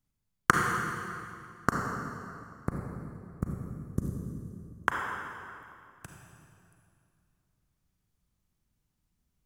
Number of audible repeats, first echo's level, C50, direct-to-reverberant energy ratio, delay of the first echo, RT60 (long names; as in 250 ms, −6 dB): no echo audible, no echo audible, 0.5 dB, 0.0 dB, no echo audible, 2.5 s